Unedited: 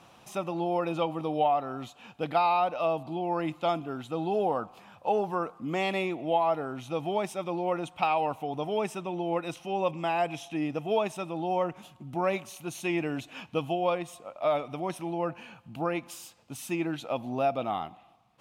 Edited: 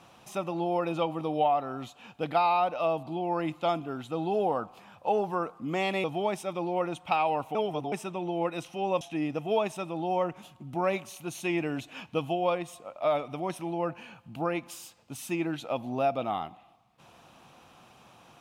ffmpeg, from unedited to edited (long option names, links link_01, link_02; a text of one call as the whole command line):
ffmpeg -i in.wav -filter_complex "[0:a]asplit=5[link_01][link_02][link_03][link_04][link_05];[link_01]atrim=end=6.042[link_06];[link_02]atrim=start=6.948:end=8.462[link_07];[link_03]atrim=start=8.458:end=8.832,asetpts=PTS-STARTPTS,areverse[link_08];[link_04]atrim=start=8.828:end=9.922[link_09];[link_05]atrim=start=10.408[link_10];[link_06][link_07]acrossfade=duration=0.004:curve1=hsin:curve2=hsin[link_11];[link_11][link_08]acrossfade=duration=0.004:curve1=hsin:curve2=hsin[link_12];[link_12][link_09]acrossfade=duration=0.004:curve1=hsin:curve2=hsin[link_13];[link_13][link_10]acrossfade=duration=0.004:curve1=hsin:curve2=hsin" out.wav